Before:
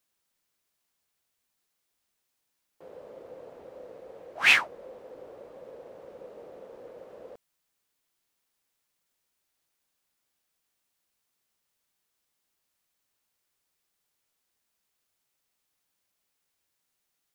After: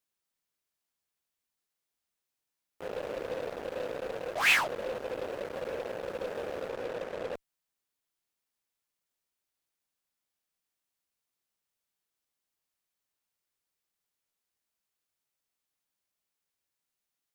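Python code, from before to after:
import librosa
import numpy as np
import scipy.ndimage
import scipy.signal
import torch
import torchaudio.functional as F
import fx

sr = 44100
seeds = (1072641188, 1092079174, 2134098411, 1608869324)

p1 = fx.lowpass(x, sr, hz=fx.line((6.67, 8600.0), (7.33, 4400.0)), slope=6, at=(6.67, 7.33), fade=0.02)
p2 = fx.fuzz(p1, sr, gain_db=45.0, gate_db=-50.0)
p3 = p1 + (p2 * librosa.db_to_amplitude(-10.0))
y = p3 * librosa.db_to_amplitude(-7.5)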